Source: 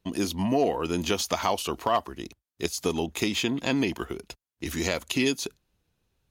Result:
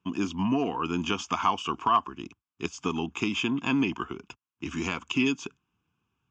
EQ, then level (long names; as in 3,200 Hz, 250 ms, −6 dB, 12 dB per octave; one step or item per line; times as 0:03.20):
high-frequency loss of the air 190 metres
loudspeaker in its box 120–9,700 Hz, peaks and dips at 270 Hz +3 dB, 540 Hz +4 dB, 1,100 Hz +6 dB, 1,800 Hz +7 dB, 2,700 Hz +3 dB, 7,400 Hz +9 dB
phaser with its sweep stopped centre 2,800 Hz, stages 8
+1.5 dB